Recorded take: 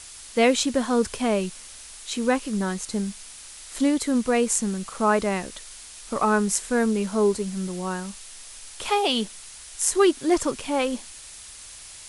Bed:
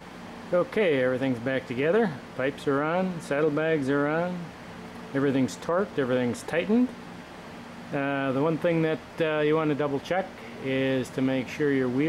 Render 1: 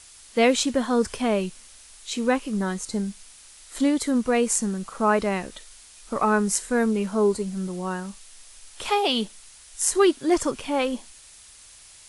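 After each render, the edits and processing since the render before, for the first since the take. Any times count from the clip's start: noise print and reduce 6 dB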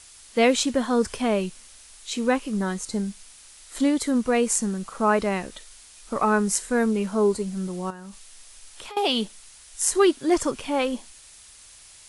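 7.9–8.97 compressor 8:1, threshold -36 dBFS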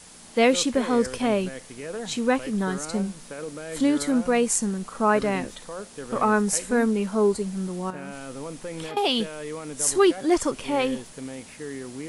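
add bed -11 dB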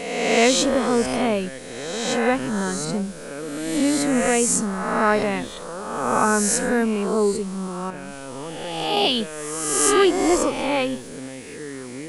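spectral swells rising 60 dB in 1.37 s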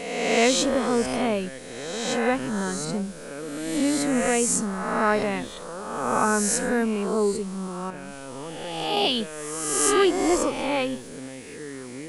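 gain -3 dB

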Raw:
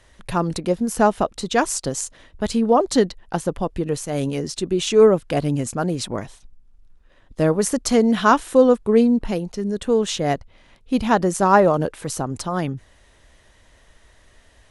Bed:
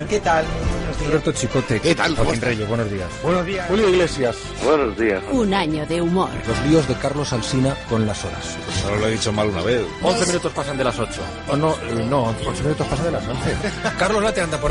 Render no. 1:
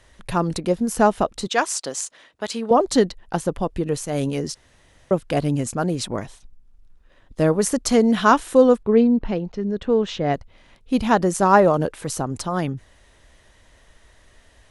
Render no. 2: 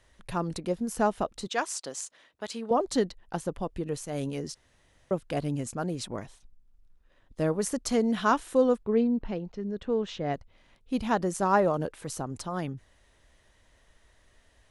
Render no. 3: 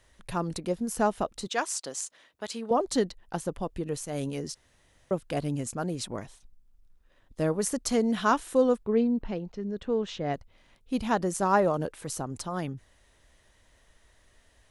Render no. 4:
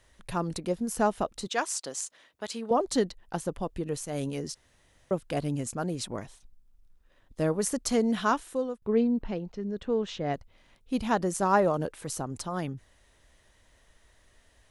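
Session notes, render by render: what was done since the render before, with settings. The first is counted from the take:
1.47–2.71 weighting filter A; 4.55–5.11 room tone; 8.83–10.34 air absorption 190 m
gain -9 dB
high shelf 6700 Hz +4.5 dB
8.15–8.82 fade out, to -17.5 dB

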